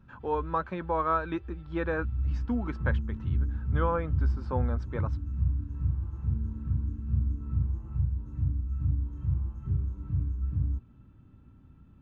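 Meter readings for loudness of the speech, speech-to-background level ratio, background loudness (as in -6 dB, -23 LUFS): -33.0 LUFS, -1.0 dB, -32.0 LUFS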